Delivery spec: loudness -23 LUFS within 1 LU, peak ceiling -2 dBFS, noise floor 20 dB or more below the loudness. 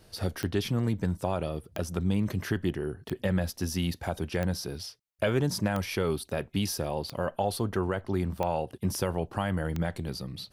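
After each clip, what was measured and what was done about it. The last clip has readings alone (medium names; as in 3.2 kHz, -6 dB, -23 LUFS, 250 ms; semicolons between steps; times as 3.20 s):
clicks found 8; loudness -31.0 LUFS; peak level -13.5 dBFS; loudness target -23.0 LUFS
-> de-click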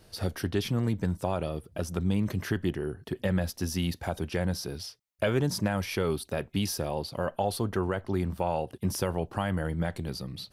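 clicks found 0; loudness -31.0 LUFS; peak level -13.5 dBFS; loudness target -23.0 LUFS
-> trim +8 dB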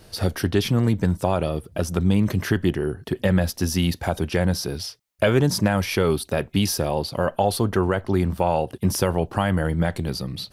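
loudness -23.0 LUFS; peak level -5.5 dBFS; noise floor -53 dBFS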